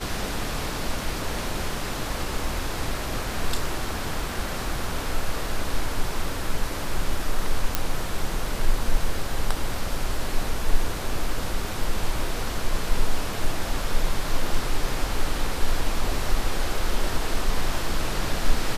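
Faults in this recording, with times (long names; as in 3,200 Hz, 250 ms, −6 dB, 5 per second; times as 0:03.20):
0:07.75: click −5 dBFS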